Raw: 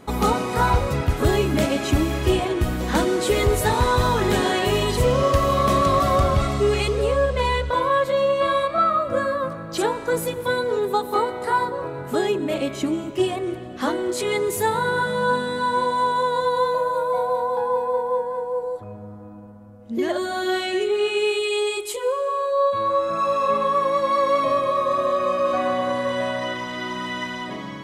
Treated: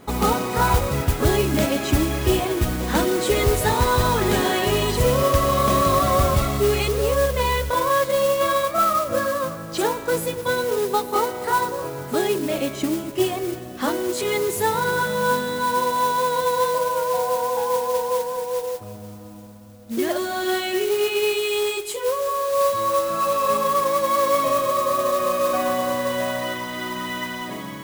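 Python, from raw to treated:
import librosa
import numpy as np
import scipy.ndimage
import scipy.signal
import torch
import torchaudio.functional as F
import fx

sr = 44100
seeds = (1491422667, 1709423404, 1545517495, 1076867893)

y = fx.mod_noise(x, sr, seeds[0], snr_db=14)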